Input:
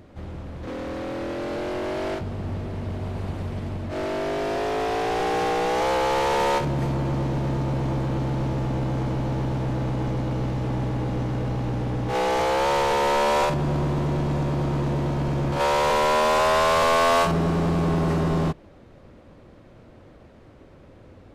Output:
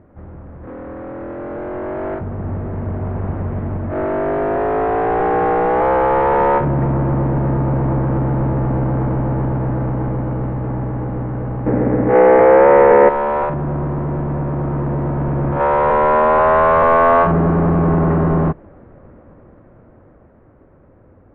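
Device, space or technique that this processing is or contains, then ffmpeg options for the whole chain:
action camera in a waterproof case: -filter_complex "[0:a]asettb=1/sr,asplit=3[link_01][link_02][link_03];[link_01]atrim=end=11.664[link_04];[link_02]atrim=start=11.66:end=13.09,asetpts=PTS-STARTPTS,afade=type=in:duration=0.004:curve=qsin,afade=type=out:start_time=1.426:duration=0.004:curve=qsin,equalizer=frequency=250:width_type=o:width=1:gain=10,equalizer=frequency=500:width_type=o:width=1:gain=11,equalizer=frequency=2000:width_type=o:width=1:gain=12,equalizer=frequency=4000:width_type=o:width=1:gain=-4[link_05];[link_03]atrim=start=13.086[link_06];[link_04][link_05]acrossfade=duration=0.004:curve1=hsin:curve2=qsin[link_07];[link_07][link_06]acrossfade=duration=0.004:curve1=qsin:curve2=hsin,lowpass=frequency=1700:width=0.5412,lowpass=frequency=1700:width=1.3066,dynaudnorm=framelen=140:gausssize=31:maxgain=8dB" -ar 48000 -c:a aac -b:a 128k

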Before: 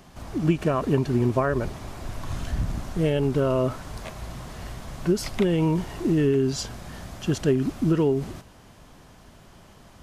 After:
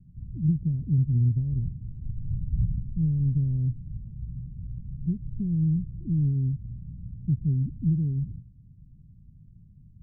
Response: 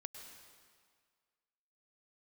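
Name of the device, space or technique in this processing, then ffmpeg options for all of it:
the neighbour's flat through the wall: -af "lowpass=frequency=170:width=0.5412,lowpass=frequency=170:width=1.3066,equalizer=frequency=130:width_type=o:width=0.94:gain=5"

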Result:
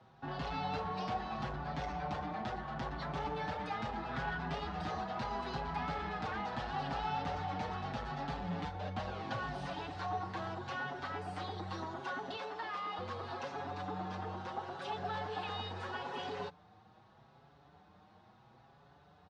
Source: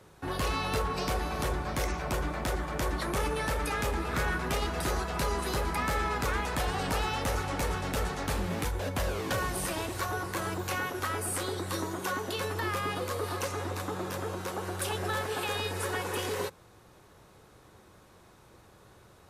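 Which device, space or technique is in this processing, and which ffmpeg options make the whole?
barber-pole flanger into a guitar amplifier: -filter_complex "[0:a]asplit=2[link_01][link_02];[link_02]adelay=5.8,afreqshift=0.76[link_03];[link_01][link_03]amix=inputs=2:normalize=1,asoftclip=type=tanh:threshold=-28.5dB,highpass=78,equalizer=frequency=150:width_type=q:width=4:gain=5,equalizer=frequency=210:width_type=q:width=4:gain=4,equalizer=frequency=360:width_type=q:width=4:gain=-5,equalizer=frequency=510:width_type=q:width=4:gain=-4,equalizer=frequency=770:width_type=q:width=4:gain=10,equalizer=frequency=2300:width_type=q:width=4:gain=-4,lowpass=frequency=4500:width=0.5412,lowpass=frequency=4500:width=1.3066,asettb=1/sr,asplit=3[link_04][link_05][link_06];[link_04]atrim=end=12.374[link_07];[link_05]atrim=start=12.37:end=12.99,asetpts=PTS-STARTPTS,afade=type=in:duration=0.004:curve=qsin,afade=type=out:start_time=0.616:duration=0.004:curve=qsin,highpass=370[link_08];[link_06]atrim=start=12.986[link_09];[link_07][link_08]acrossfade=duration=0.004:curve1=hsin:curve2=qsin[link_10];[link_10][link_09]acrossfade=duration=0.004:curve1=qsin:curve2=hsin,volume=-3.5dB"

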